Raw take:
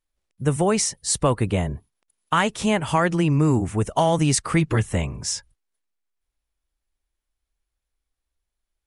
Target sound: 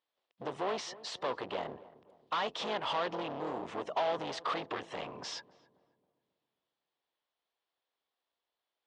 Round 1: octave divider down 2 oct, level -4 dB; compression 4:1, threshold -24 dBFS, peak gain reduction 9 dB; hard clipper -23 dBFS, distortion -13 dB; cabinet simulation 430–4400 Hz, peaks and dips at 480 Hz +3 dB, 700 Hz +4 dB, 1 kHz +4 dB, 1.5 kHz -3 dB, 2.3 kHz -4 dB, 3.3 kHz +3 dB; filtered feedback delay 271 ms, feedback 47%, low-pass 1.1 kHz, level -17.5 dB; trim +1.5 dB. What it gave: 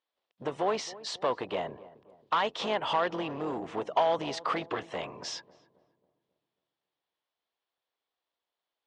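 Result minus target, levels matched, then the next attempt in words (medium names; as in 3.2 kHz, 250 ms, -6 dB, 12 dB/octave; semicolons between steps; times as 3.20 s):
hard clipper: distortion -7 dB
octave divider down 2 oct, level -4 dB; compression 4:1, threshold -24 dBFS, peak gain reduction 9 dB; hard clipper -31.5 dBFS, distortion -5 dB; cabinet simulation 430–4400 Hz, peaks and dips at 480 Hz +3 dB, 700 Hz +4 dB, 1 kHz +4 dB, 1.5 kHz -3 dB, 2.3 kHz -4 dB, 3.3 kHz +3 dB; filtered feedback delay 271 ms, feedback 47%, low-pass 1.1 kHz, level -17.5 dB; trim +1.5 dB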